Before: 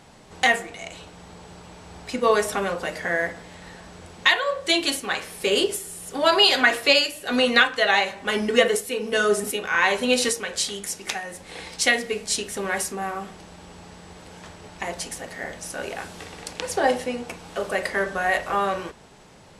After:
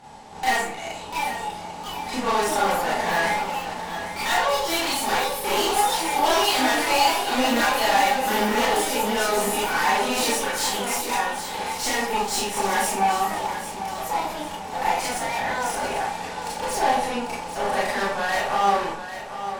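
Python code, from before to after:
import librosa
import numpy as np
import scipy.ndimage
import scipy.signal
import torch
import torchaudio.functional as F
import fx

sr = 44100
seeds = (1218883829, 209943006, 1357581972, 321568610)

y = fx.tube_stage(x, sr, drive_db=29.0, bias=0.75)
y = fx.rev_schroeder(y, sr, rt60_s=0.34, comb_ms=27, drr_db=-6.0)
y = fx.echo_pitch(y, sr, ms=782, semitones=4, count=3, db_per_echo=-6.0)
y = fx.peak_eq(y, sr, hz=850.0, db=14.5, octaves=0.3)
y = fx.echo_feedback(y, sr, ms=795, feedback_pct=38, wet_db=-11.0)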